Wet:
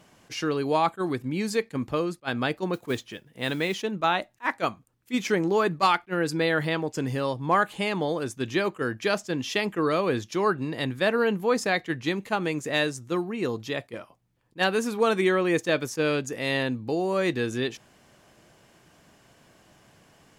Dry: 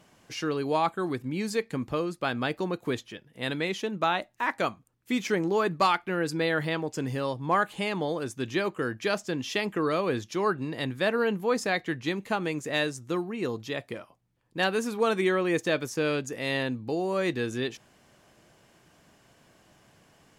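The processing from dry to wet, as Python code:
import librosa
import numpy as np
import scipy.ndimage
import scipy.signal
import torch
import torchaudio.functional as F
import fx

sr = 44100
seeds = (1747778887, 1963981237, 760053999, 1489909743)

y = fx.mod_noise(x, sr, seeds[0], snr_db=26, at=(2.73, 3.83))
y = fx.attack_slew(y, sr, db_per_s=520.0)
y = y * librosa.db_to_amplitude(2.5)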